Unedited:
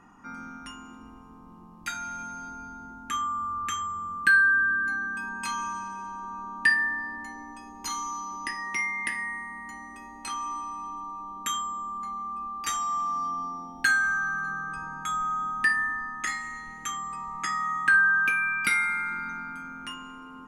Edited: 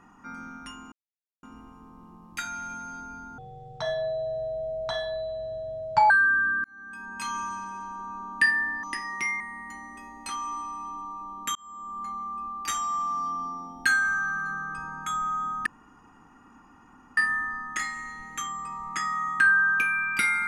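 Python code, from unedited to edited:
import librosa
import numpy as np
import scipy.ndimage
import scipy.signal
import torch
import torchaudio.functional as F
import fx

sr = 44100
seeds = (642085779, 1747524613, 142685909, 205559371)

y = fx.edit(x, sr, fx.insert_silence(at_s=0.92, length_s=0.51),
    fx.speed_span(start_s=2.87, length_s=1.47, speed=0.54),
    fx.fade_in_span(start_s=4.88, length_s=0.72),
    fx.cut(start_s=7.07, length_s=1.3),
    fx.cut(start_s=8.94, length_s=0.45),
    fx.fade_in_span(start_s=11.54, length_s=0.47),
    fx.insert_room_tone(at_s=15.65, length_s=1.51), tone=tone)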